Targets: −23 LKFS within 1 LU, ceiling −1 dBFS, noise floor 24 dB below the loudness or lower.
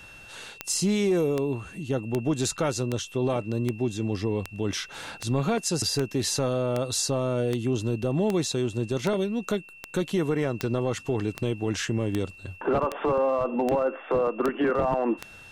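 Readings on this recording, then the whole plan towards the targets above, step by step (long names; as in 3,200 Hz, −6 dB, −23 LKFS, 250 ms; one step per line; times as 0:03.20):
number of clicks 20; interfering tone 2,700 Hz; level of the tone −46 dBFS; integrated loudness −27.0 LKFS; sample peak −9.0 dBFS; target loudness −23.0 LKFS
→ click removal
notch filter 2,700 Hz, Q 30
level +4 dB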